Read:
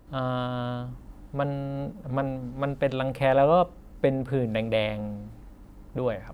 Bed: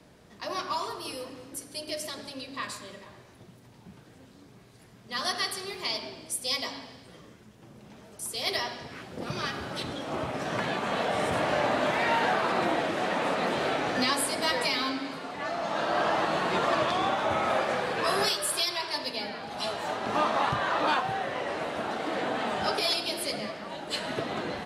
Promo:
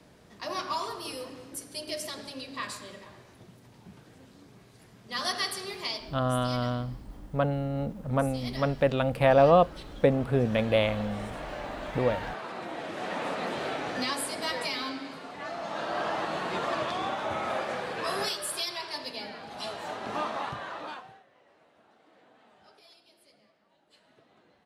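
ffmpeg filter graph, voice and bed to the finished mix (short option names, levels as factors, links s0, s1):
-filter_complex "[0:a]adelay=6000,volume=1.12[s0];[1:a]volume=2.11,afade=t=out:st=5.79:d=0.41:silence=0.281838,afade=t=in:st=12.68:d=0.48:silence=0.446684,afade=t=out:st=20.07:d=1.17:silence=0.0530884[s1];[s0][s1]amix=inputs=2:normalize=0"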